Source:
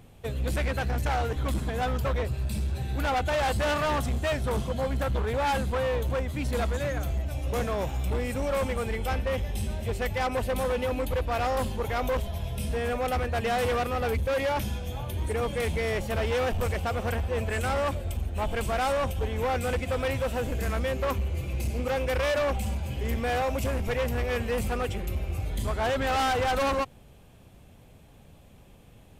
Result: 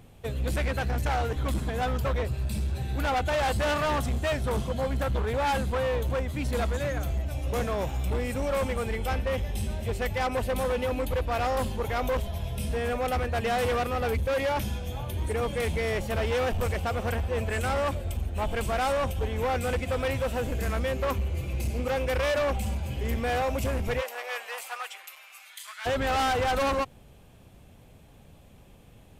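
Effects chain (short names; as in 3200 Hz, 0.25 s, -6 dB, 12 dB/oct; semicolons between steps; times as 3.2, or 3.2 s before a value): 24–25.85 HPF 540 Hz -> 1500 Hz 24 dB/oct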